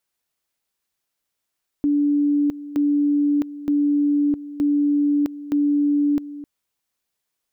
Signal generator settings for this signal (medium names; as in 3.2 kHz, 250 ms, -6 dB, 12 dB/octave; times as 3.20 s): two-level tone 290 Hz -15.5 dBFS, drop 15.5 dB, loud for 0.66 s, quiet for 0.26 s, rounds 5